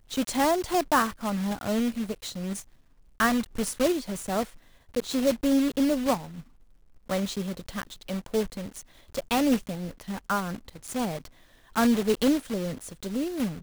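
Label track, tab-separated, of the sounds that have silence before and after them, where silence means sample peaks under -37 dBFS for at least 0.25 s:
3.200000	4.450000	sound
4.940000	6.410000	sound
7.090000	8.810000	sound
9.140000	11.260000	sound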